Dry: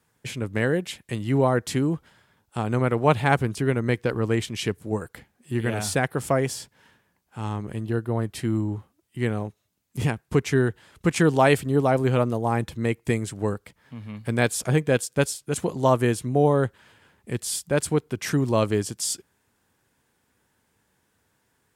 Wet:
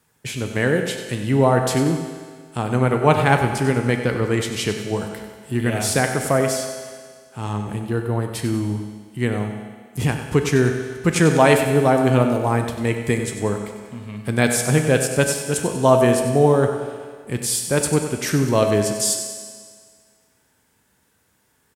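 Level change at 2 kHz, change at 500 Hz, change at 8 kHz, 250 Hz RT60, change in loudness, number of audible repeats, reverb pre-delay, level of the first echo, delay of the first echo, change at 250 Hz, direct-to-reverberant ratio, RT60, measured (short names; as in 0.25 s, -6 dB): +5.0 dB, +5.0 dB, +7.5 dB, 1.8 s, +4.5 dB, 2, 5 ms, -10.5 dB, 95 ms, +4.5 dB, 4.0 dB, 1.8 s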